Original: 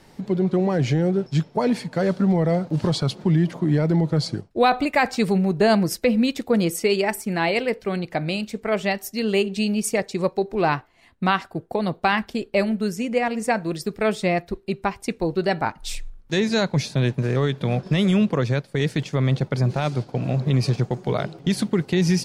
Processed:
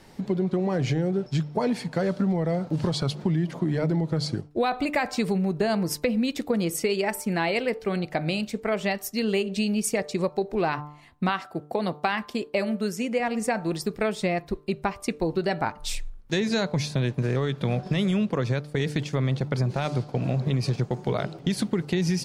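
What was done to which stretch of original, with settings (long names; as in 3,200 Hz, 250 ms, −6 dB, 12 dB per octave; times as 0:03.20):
0:11.29–0:13.20: high-pass filter 210 Hz 6 dB per octave
whole clip: hum removal 148.3 Hz, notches 9; downward compressor, threshold −21 dBFS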